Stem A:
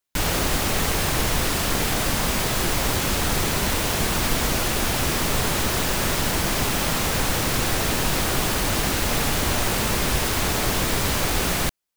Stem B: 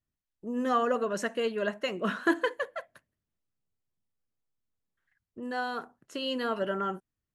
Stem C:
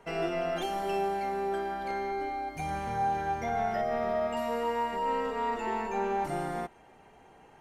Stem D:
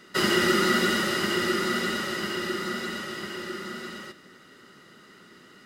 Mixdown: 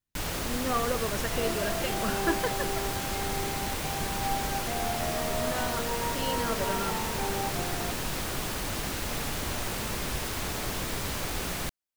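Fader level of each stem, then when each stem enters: -10.0 dB, -3.0 dB, -3.5 dB, mute; 0.00 s, 0.00 s, 1.25 s, mute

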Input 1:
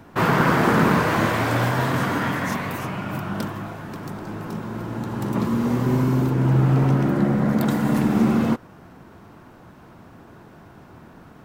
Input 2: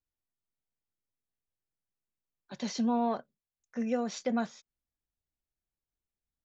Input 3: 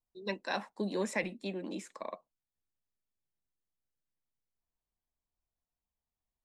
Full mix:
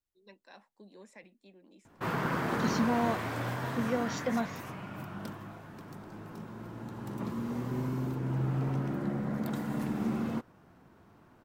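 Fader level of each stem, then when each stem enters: -13.5 dB, -1.0 dB, -19.5 dB; 1.85 s, 0.00 s, 0.00 s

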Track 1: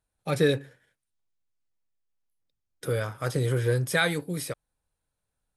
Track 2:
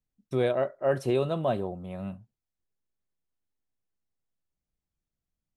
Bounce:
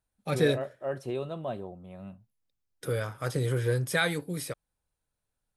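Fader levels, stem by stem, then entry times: -2.5 dB, -7.5 dB; 0.00 s, 0.00 s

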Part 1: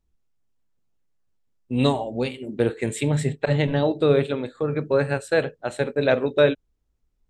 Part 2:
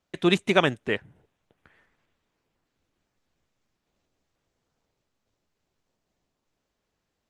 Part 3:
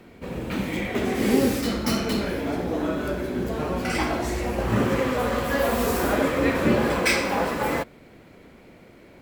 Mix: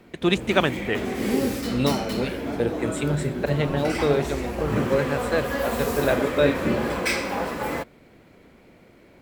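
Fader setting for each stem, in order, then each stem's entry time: -3.0 dB, 0.0 dB, -3.0 dB; 0.00 s, 0.00 s, 0.00 s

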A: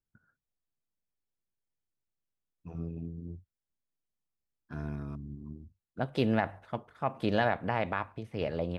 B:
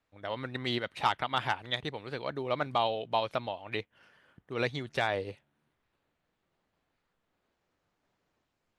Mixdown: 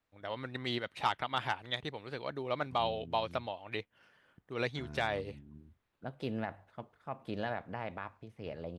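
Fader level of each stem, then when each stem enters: -9.5 dB, -3.5 dB; 0.05 s, 0.00 s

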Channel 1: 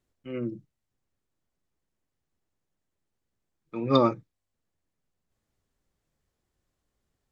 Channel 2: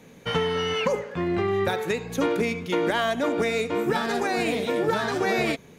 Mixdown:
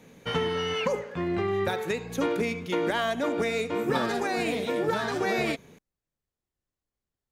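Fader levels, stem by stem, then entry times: -10.5 dB, -3.0 dB; 0.00 s, 0.00 s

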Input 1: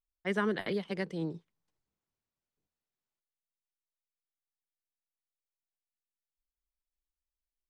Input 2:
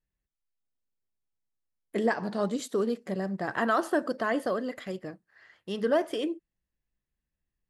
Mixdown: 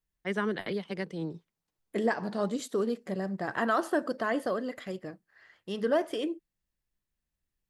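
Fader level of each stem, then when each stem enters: 0.0 dB, -1.5 dB; 0.00 s, 0.00 s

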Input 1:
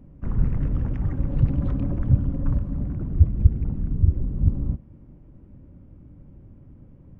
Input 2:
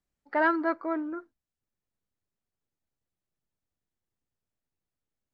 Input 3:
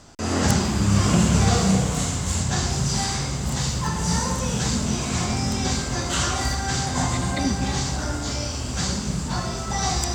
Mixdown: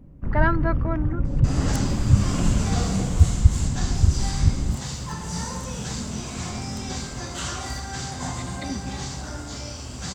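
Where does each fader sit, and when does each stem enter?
+0.5 dB, +1.5 dB, -7.0 dB; 0.00 s, 0.00 s, 1.25 s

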